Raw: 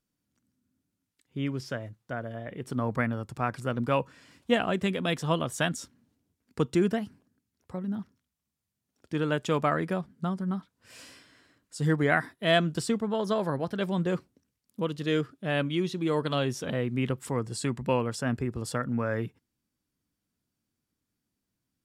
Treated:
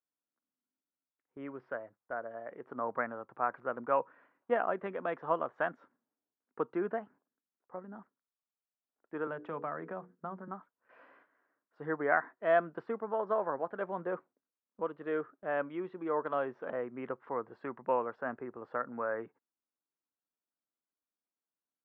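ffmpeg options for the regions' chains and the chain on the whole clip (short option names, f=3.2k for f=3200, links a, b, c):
-filter_complex "[0:a]asettb=1/sr,asplit=3[a][b][c];[a]atrim=end=9.274[d];[b]atrim=start=9.27:end=10.48,asetpts=PTS-STARTPTS,afade=t=in:d=0.004:c=qsin,afade=t=out:st=1.206:d=0.004:c=qsin,bandreject=f=60:t=h:w=6,bandreject=f=120:t=h:w=6,bandreject=f=180:t=h:w=6,bandreject=f=240:t=h:w=6,bandreject=f=300:t=h:w=6,bandreject=f=360:t=h:w=6,bandreject=f=420:t=h:w=6,bandreject=f=480:t=h:w=6,acrossover=split=210|3000[e][f][g];[f]acompressor=threshold=-33dB:ratio=5:attack=3.2:release=140:knee=2.83:detection=peak[h];[e][h][g]amix=inputs=3:normalize=0,equalizer=f=110:w=0.41:g=4.5[i];[c]atrim=start=10.476[j];[d][i]acrossfade=d=0.004:c1=hsin:c2=qsin[k];[k][j]acrossfade=d=0.004:c1=qsin:c2=hsin,highpass=550,agate=range=-8dB:threshold=-56dB:ratio=16:detection=peak,lowpass=f=1.5k:w=0.5412,lowpass=f=1.5k:w=1.3066"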